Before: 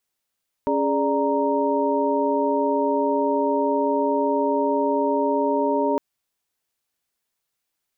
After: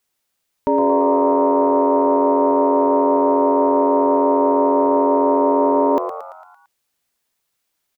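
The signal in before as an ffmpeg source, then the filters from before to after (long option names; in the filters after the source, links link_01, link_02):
-f lavfi -i "aevalsrc='0.0631*(sin(2*PI*277.18*t)+sin(2*PI*415.3*t)+sin(2*PI*587.33*t)+sin(2*PI*932.33*t))':duration=5.31:sample_rate=44100"
-filter_complex "[0:a]acontrast=35,asplit=2[link_01][link_02];[link_02]asplit=6[link_03][link_04][link_05][link_06][link_07][link_08];[link_03]adelay=113,afreqshift=89,volume=-9dB[link_09];[link_04]adelay=226,afreqshift=178,volume=-14.7dB[link_10];[link_05]adelay=339,afreqshift=267,volume=-20.4dB[link_11];[link_06]adelay=452,afreqshift=356,volume=-26dB[link_12];[link_07]adelay=565,afreqshift=445,volume=-31.7dB[link_13];[link_08]adelay=678,afreqshift=534,volume=-37.4dB[link_14];[link_09][link_10][link_11][link_12][link_13][link_14]amix=inputs=6:normalize=0[link_15];[link_01][link_15]amix=inputs=2:normalize=0"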